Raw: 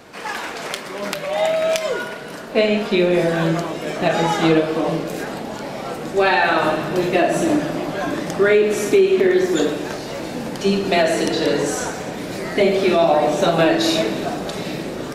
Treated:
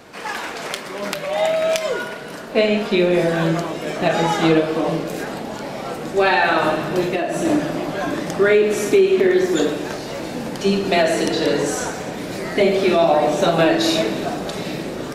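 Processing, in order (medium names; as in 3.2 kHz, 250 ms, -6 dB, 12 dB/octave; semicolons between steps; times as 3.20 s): 7.02–7.45 s: compression, threshold -18 dBFS, peak gain reduction 6.5 dB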